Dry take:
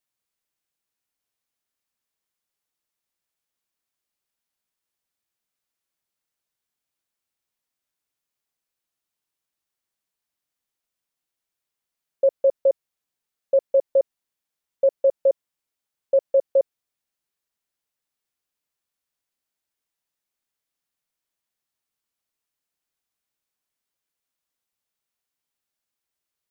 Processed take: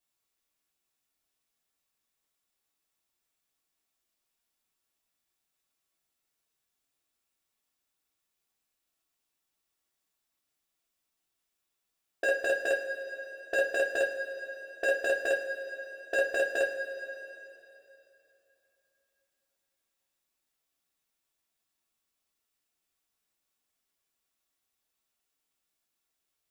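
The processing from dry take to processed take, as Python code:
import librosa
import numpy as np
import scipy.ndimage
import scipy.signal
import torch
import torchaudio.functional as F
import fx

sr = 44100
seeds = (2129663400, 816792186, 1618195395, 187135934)

y = 10.0 ** (-17.5 / 20.0) * (np.abs((x / 10.0 ** (-17.5 / 20.0) + 3.0) % 4.0 - 2.0) - 1.0)
y = fx.rev_double_slope(y, sr, seeds[0], early_s=0.27, late_s=3.1, knee_db=-18, drr_db=-4.5)
y = F.gain(torch.from_numpy(y), -3.5).numpy()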